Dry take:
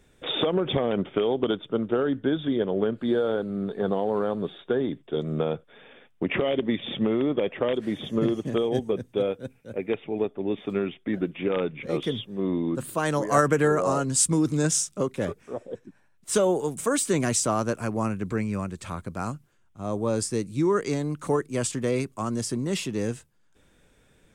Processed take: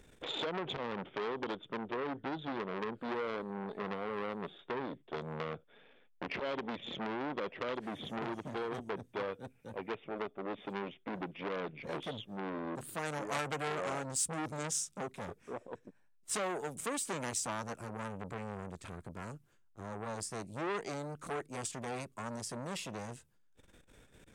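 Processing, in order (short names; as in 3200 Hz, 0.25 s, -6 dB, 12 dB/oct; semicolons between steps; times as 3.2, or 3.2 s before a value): compressor 1.5:1, threshold -53 dBFS, peak gain reduction 13.5 dB; core saturation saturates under 2500 Hz; gain +2.5 dB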